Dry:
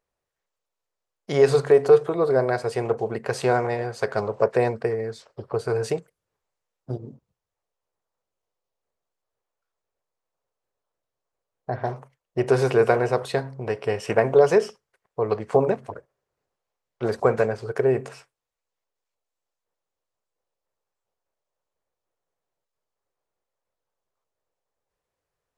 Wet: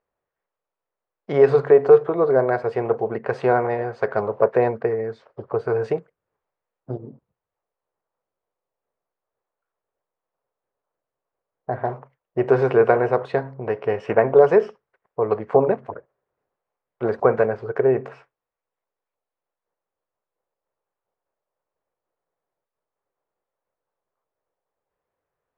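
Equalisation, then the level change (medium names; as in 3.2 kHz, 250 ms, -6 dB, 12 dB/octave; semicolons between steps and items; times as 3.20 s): low-pass 1.8 kHz 12 dB/octave; bass shelf 140 Hz -8 dB; +3.5 dB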